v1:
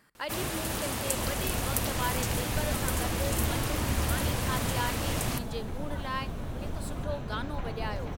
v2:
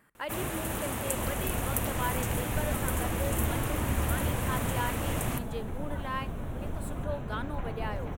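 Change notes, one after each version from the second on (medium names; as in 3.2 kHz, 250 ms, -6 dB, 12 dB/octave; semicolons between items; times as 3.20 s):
master: add peaking EQ 4.8 kHz -14 dB 0.75 oct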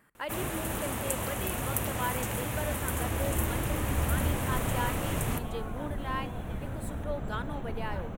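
second sound: entry +2.00 s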